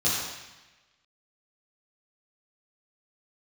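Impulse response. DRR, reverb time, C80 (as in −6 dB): −9.5 dB, 1.1 s, 1.5 dB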